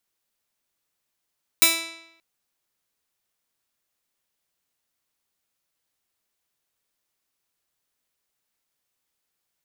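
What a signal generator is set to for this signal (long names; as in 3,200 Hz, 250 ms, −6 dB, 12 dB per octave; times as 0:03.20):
Karplus-Strong string E4, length 0.58 s, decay 0.84 s, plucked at 0.21, bright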